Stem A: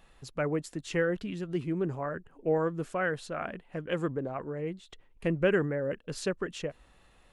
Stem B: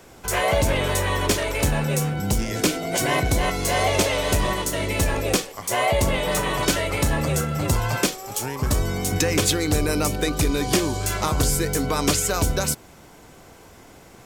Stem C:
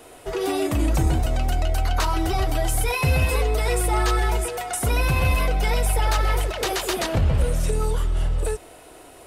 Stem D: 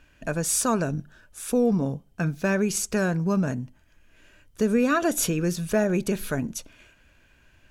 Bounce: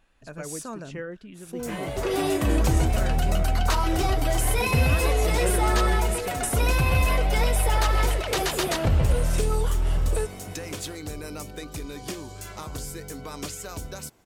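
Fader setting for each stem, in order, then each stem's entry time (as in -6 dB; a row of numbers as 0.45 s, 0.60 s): -7.5 dB, -14.0 dB, -1.0 dB, -13.0 dB; 0.00 s, 1.35 s, 1.70 s, 0.00 s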